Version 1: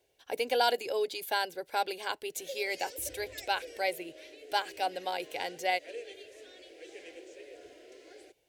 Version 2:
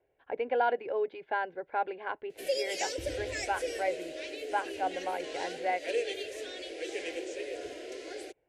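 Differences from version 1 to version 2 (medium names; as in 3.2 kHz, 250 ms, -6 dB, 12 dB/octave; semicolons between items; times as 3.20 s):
speech: add low-pass 2 kHz 24 dB/octave; background +11.0 dB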